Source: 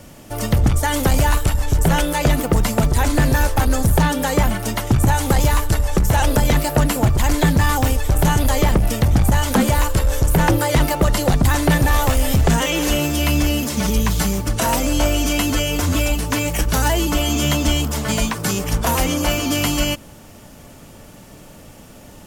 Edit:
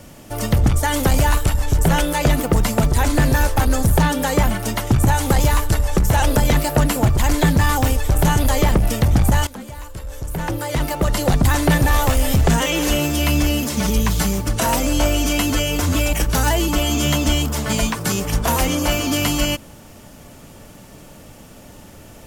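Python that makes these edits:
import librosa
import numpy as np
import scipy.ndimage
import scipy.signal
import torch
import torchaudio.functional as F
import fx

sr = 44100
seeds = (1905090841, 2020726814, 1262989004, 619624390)

y = fx.edit(x, sr, fx.fade_in_from(start_s=9.47, length_s=1.87, curve='qua', floor_db=-18.5),
    fx.cut(start_s=16.13, length_s=0.39), tone=tone)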